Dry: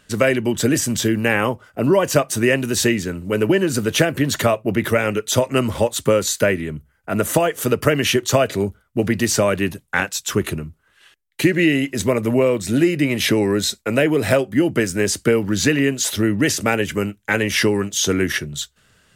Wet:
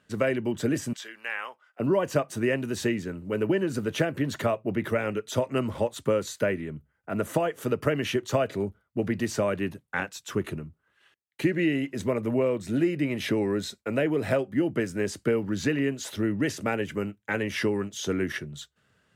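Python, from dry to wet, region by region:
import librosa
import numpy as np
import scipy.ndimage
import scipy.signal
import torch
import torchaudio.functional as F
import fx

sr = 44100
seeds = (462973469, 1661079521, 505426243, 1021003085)

y = fx.chain(x, sr, fx.highpass(hz=1300.0, slope=12),
    fx.high_shelf(hz=9400.0, db=-11.5), at=(0.93, 1.8))
y = scipy.signal.sosfilt(scipy.signal.butter(2, 86.0, 'highpass', fs=sr, output='sos'), y)
y = fx.high_shelf(y, sr, hz=3300.0, db=-11.0)
y = F.gain(torch.from_numpy(y), -8.0).numpy()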